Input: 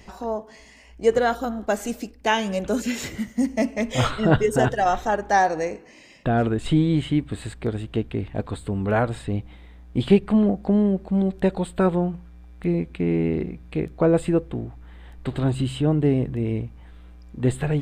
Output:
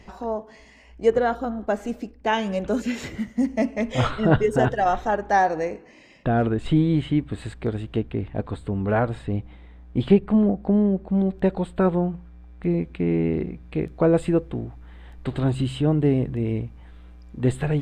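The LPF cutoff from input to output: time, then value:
LPF 6 dB/oct
3200 Hz
from 1.1 s 1500 Hz
from 2.33 s 2800 Hz
from 7.38 s 4300 Hz
from 7.99 s 2300 Hz
from 10.13 s 1400 Hz
from 11.1 s 2300 Hz
from 12.71 s 3700 Hz
from 13.81 s 6900 Hz

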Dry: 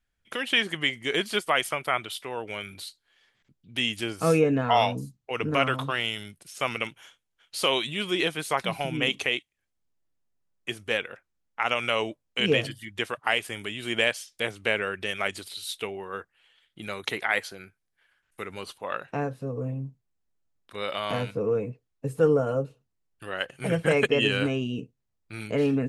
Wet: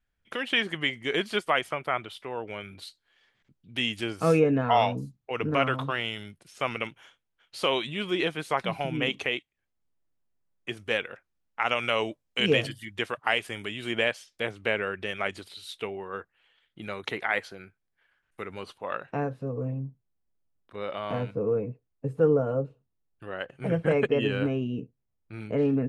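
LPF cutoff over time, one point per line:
LPF 6 dB/oct
3100 Hz
from 1.59 s 1600 Hz
from 2.82 s 4100 Hz
from 4.4 s 2500 Hz
from 10.77 s 5000 Hz
from 12.02 s 11000 Hz
from 12.96 s 4500 Hz
from 13.91 s 2300 Hz
from 19.8 s 1000 Hz

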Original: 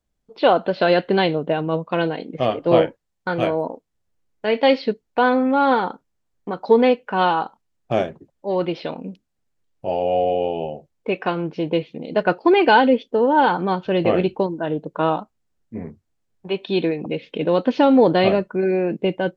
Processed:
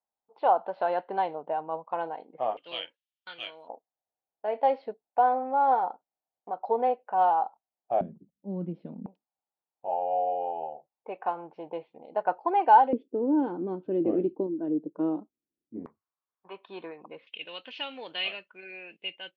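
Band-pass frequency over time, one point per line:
band-pass, Q 4.5
850 Hz
from 2.57 s 3100 Hz
from 3.68 s 750 Hz
from 8.01 s 200 Hz
from 9.06 s 830 Hz
from 12.93 s 310 Hz
from 15.86 s 1100 Hz
from 17.27 s 2800 Hz

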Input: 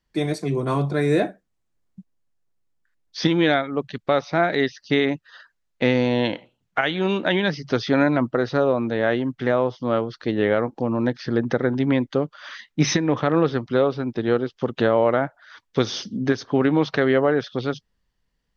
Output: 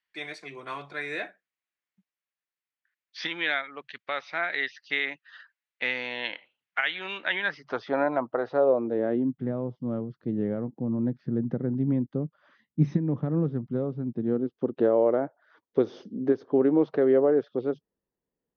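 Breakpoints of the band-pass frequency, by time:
band-pass, Q 1.6
7.26 s 2200 Hz
7.87 s 780 Hz
8.45 s 780 Hz
9.47 s 170 Hz
14.1 s 170 Hz
14.88 s 400 Hz

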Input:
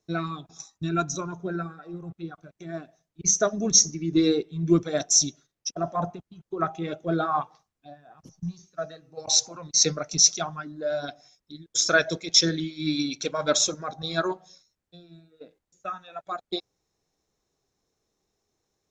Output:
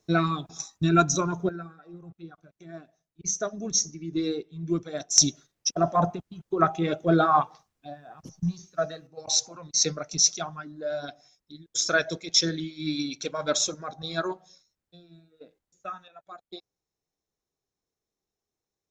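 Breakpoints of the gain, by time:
+6 dB
from 1.49 s -7 dB
from 5.18 s +5 dB
from 9.07 s -3 dB
from 16.08 s -11.5 dB

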